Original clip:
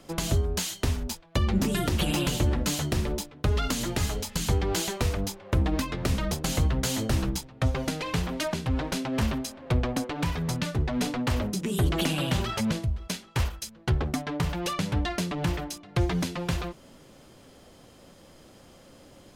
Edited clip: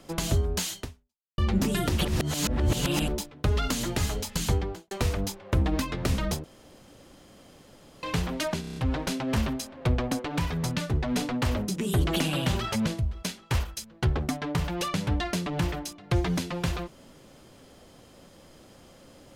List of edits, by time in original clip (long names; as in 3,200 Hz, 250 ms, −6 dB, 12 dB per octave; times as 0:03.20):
0:00.79–0:01.38: fade out exponential
0:02.05–0:03.08: reverse
0:04.48–0:04.91: fade out and dull
0:06.44–0:08.03: fill with room tone
0:08.61: stutter 0.03 s, 6 plays